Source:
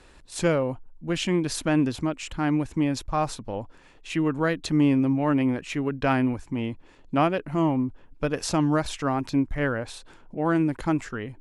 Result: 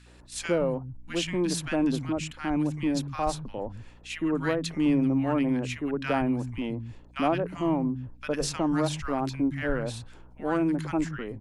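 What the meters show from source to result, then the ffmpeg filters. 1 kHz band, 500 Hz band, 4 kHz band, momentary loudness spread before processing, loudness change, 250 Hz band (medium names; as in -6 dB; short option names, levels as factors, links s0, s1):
-3.5 dB, -2.0 dB, -1.5 dB, 11 LU, -2.5 dB, -2.5 dB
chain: -filter_complex "[0:a]acrossover=split=170|1300[s0][s1][s2];[s1]adelay=60[s3];[s0]adelay=180[s4];[s4][s3][s2]amix=inputs=3:normalize=0,asplit=2[s5][s6];[s6]asoftclip=type=tanh:threshold=0.0708,volume=0.282[s7];[s5][s7]amix=inputs=2:normalize=0,aeval=exprs='val(0)+0.00316*(sin(2*PI*60*n/s)+sin(2*PI*2*60*n/s)/2+sin(2*PI*3*60*n/s)/3+sin(2*PI*4*60*n/s)/4+sin(2*PI*5*60*n/s)/5)':c=same,volume=0.708"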